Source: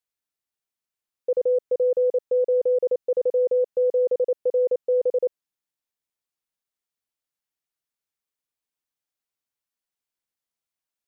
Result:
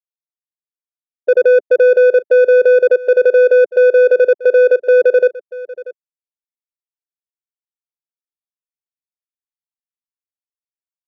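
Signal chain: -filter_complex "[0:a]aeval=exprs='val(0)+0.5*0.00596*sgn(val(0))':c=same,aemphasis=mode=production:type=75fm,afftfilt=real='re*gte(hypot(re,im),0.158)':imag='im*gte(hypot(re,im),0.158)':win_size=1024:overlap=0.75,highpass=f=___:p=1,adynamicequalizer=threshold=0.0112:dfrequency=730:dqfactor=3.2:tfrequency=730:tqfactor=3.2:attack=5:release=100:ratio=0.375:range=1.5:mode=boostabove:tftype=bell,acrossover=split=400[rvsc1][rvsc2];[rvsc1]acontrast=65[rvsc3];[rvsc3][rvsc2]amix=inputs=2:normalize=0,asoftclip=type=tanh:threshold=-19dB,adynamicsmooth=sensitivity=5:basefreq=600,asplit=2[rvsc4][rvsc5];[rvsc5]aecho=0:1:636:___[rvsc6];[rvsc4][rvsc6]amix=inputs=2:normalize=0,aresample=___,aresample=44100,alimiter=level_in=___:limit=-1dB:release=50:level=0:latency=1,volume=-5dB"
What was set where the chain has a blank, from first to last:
190, 0.0668, 16000, 24.5dB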